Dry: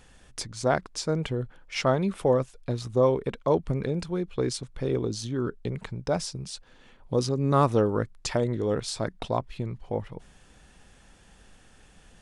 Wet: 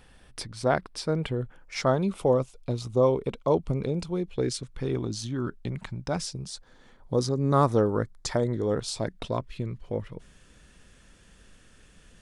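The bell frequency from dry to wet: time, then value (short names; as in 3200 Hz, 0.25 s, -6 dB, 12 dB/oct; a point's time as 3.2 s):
bell -11 dB 0.36 oct
1.22 s 6800 Hz
2.12 s 1700 Hz
4.12 s 1700 Hz
5.01 s 450 Hz
6.09 s 450 Hz
6.51 s 2700 Hz
8.74 s 2700 Hz
9.23 s 800 Hz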